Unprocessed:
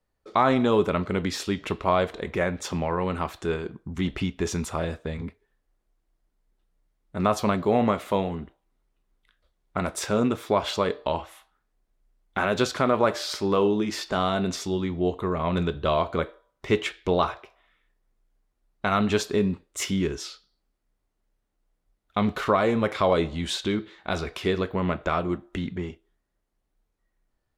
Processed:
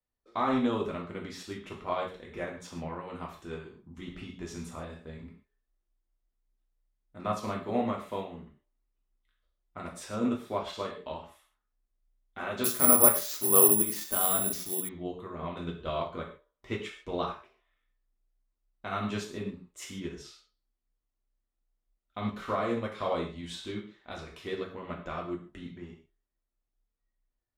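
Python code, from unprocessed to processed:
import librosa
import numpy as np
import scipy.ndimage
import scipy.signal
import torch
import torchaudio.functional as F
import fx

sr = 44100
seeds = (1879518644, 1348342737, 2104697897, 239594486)

y = fx.rev_gated(x, sr, seeds[0], gate_ms=170, shape='falling', drr_db=-1.5)
y = fx.resample_bad(y, sr, factor=4, down='none', up='zero_stuff', at=(12.64, 14.89))
y = fx.upward_expand(y, sr, threshold_db=-26.0, expansion=1.5)
y = y * 10.0 ** (-7.5 / 20.0)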